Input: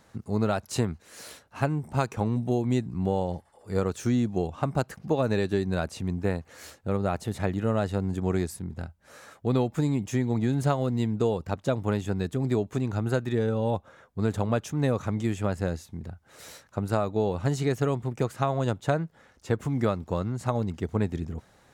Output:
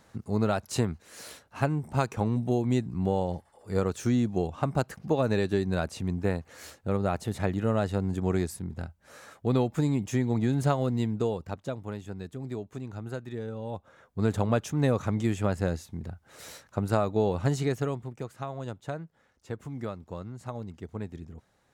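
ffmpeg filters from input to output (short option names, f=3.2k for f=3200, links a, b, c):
-af "volume=10dB,afade=t=out:st=10.88:d=0.96:silence=0.334965,afade=t=in:st=13.69:d=0.58:silence=0.298538,afade=t=out:st=17.43:d=0.74:silence=0.298538"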